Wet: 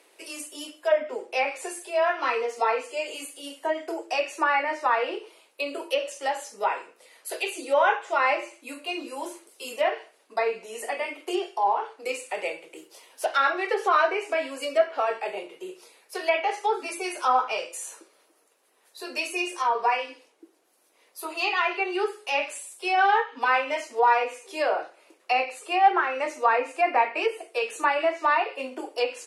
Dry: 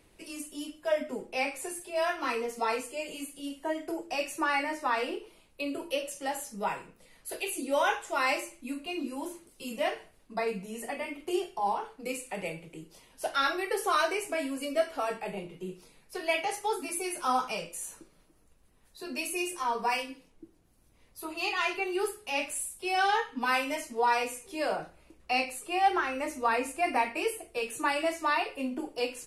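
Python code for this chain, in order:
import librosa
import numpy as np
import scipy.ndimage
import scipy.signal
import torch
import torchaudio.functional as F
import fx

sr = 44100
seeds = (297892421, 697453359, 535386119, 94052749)

y = fx.block_float(x, sr, bits=5, at=(12.76, 13.88))
y = scipy.signal.sosfilt(scipy.signal.butter(4, 390.0, 'highpass', fs=sr, output='sos'), y)
y = fx.env_lowpass_down(y, sr, base_hz=2200.0, full_db=-25.5)
y = y * 10.0 ** (6.5 / 20.0)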